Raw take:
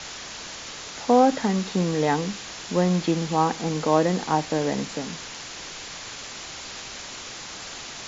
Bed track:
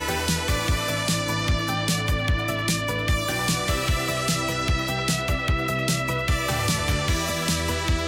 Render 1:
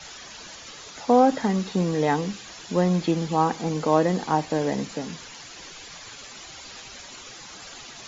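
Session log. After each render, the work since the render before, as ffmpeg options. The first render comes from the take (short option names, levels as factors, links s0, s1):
-af "afftdn=nr=10:nf=-38"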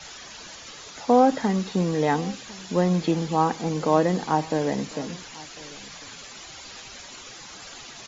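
-filter_complex "[0:a]asplit=2[s0][s1];[s1]adelay=1050,volume=0.0891,highshelf=f=4000:g=-23.6[s2];[s0][s2]amix=inputs=2:normalize=0"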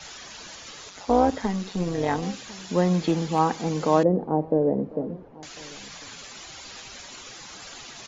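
-filter_complex "[0:a]asettb=1/sr,asplit=3[s0][s1][s2];[s0]atrim=end=0.894[s3];[s1]atrim=start=0.89:end=2.23,asetpts=PTS-STARTPTS,afade=t=in:d=0.004:c=qsin,afade=t=out:st=1.336:d=0.004:c=qsin,tremolo=f=190:d=0.621[s4];[s2]atrim=start=2.226[s5];[s3][s4]acrossfade=d=0.004:c1=hsin:c2=qsin[s6];[s6][s5]acrossfade=d=0.004:c1=qsin:c2=hsin,asettb=1/sr,asplit=3[s7][s8][s9];[s7]atrim=end=2.844[s10];[s8]atrim=start=2.84:end=3.39,asetpts=PTS-STARTPTS,afade=t=in:d=0.004:c=qsin,afade=t=out:st=0.546:d=0.004:c=qsin,asoftclip=type=hard:threshold=0.2[s11];[s9]atrim=start=3.386[s12];[s10][s11]acrossfade=d=0.004:c1=hsin:c2=qsin[s13];[s13][s12]acrossfade=d=0.004:c1=qsin:c2=hsin,asettb=1/sr,asplit=3[s14][s15][s16];[s14]atrim=end=4.034[s17];[s15]atrim=start=4.03:end=5.43,asetpts=PTS-STARTPTS,afade=t=in:d=0.004:c=qsin,afade=t=out:st=1.396:d=0.004:c=qsin,lowpass=f=510:t=q:w=1.7[s18];[s16]atrim=start=5.426[s19];[s17][s18]acrossfade=d=0.004:c1=hsin:c2=qsin[s20];[s20][s19]acrossfade=d=0.004:c1=qsin:c2=hsin"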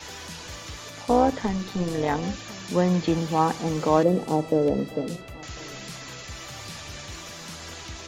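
-filter_complex "[1:a]volume=0.133[s0];[0:a][s0]amix=inputs=2:normalize=0"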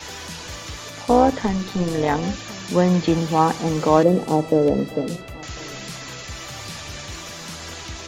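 -af "volume=1.68"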